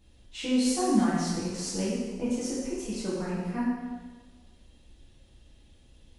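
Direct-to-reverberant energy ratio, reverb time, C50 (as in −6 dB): −9.5 dB, 1.4 s, −1.5 dB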